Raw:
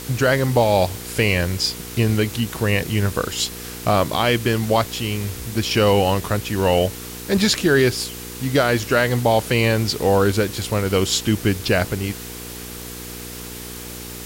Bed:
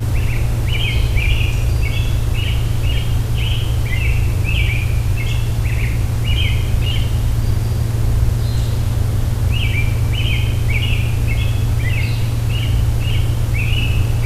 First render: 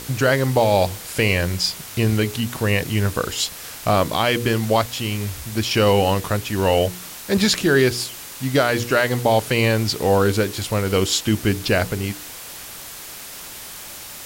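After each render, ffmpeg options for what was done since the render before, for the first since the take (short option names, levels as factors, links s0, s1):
-af "bandreject=f=60:t=h:w=4,bandreject=f=120:t=h:w=4,bandreject=f=180:t=h:w=4,bandreject=f=240:t=h:w=4,bandreject=f=300:t=h:w=4,bandreject=f=360:t=h:w=4,bandreject=f=420:t=h:w=4,bandreject=f=480:t=h:w=4"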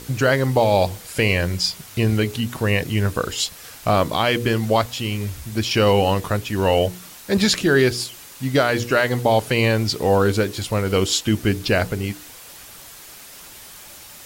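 -af "afftdn=nr=6:nf=-36"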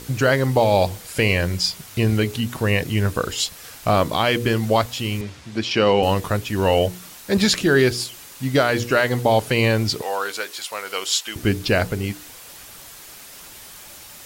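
-filter_complex "[0:a]asettb=1/sr,asplit=3[s0][s1][s2];[s0]atrim=end=5.214[s3];[s1]atrim=start=5.21:end=6.03,asetpts=PTS-STARTPTS,afade=t=in:d=0.004:c=qsin,afade=t=out:st=0.816:d=0.004:c=qsin,highpass=160,lowpass=5000[s4];[s2]atrim=start=6.026[s5];[s3][s4]acrossfade=d=0.004:c1=hsin:c2=qsin[s6];[s6][s5]acrossfade=d=0.004:c1=qsin:c2=hsin,asettb=1/sr,asplit=3[s7][s8][s9];[s7]atrim=end=10.024[s10];[s8]atrim=start=10.02:end=11.36,asetpts=PTS-STARTPTS,afade=t=in:d=0.004:c=qsin,afade=t=out:st=1.336:d=0.004:c=qsin,highpass=880[s11];[s9]atrim=start=11.356[s12];[s10][s11]acrossfade=d=0.004:c1=hsin:c2=qsin[s13];[s13][s12]acrossfade=d=0.004:c1=qsin:c2=hsin"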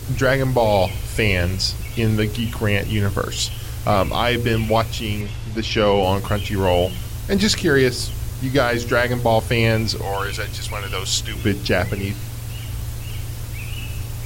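-filter_complex "[1:a]volume=0.237[s0];[0:a][s0]amix=inputs=2:normalize=0"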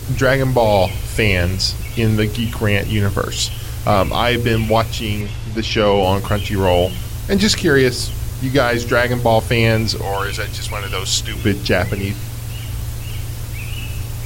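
-af "volume=1.41,alimiter=limit=0.708:level=0:latency=1"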